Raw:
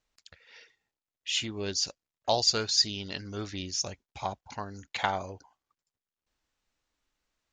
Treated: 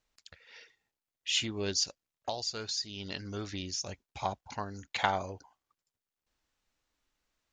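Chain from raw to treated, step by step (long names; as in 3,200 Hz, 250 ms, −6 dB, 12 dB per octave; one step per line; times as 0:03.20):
0:01.83–0:03.89: downward compressor 6 to 1, threshold −33 dBFS, peak gain reduction 13.5 dB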